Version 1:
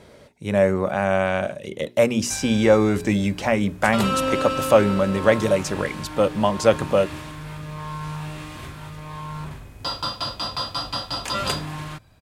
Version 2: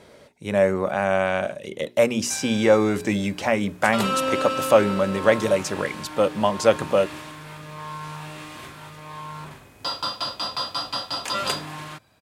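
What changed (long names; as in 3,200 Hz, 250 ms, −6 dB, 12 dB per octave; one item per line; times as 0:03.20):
background: add high-pass filter 150 Hz 6 dB per octave
master: add low-shelf EQ 160 Hz −8 dB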